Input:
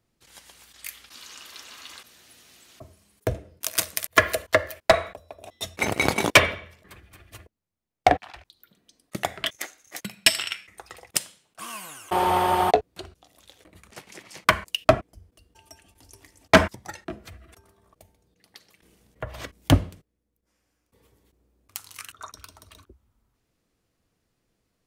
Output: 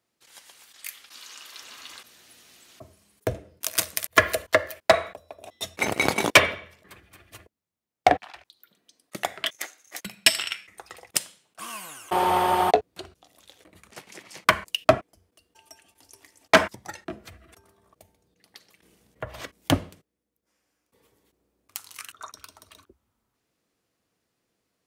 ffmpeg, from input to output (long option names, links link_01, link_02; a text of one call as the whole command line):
ffmpeg -i in.wav -af "asetnsamples=nb_out_samples=441:pad=0,asendcmd='1.62 highpass f 110;3.7 highpass f 47;4.49 highpass f 150;8.25 highpass f 380;10.06 highpass f 130;14.98 highpass f 420;16.68 highpass f 110;19.4 highpass f 250',highpass=frequency=480:poles=1" out.wav